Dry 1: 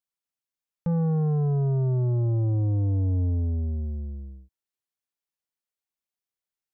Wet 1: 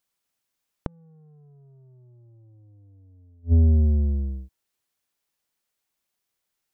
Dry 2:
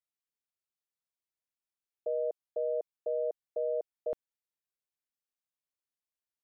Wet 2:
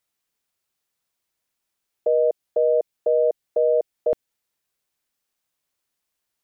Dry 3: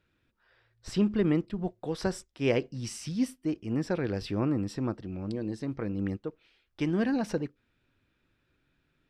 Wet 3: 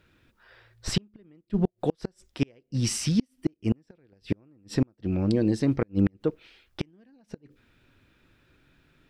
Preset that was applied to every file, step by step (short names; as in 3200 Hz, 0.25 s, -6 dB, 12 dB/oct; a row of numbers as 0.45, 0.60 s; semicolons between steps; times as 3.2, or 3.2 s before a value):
dynamic EQ 1100 Hz, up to -5 dB, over -50 dBFS, Q 1.3; flipped gate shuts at -23 dBFS, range -40 dB; normalise peaks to -12 dBFS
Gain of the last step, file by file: +11.0, +14.0, +10.5 dB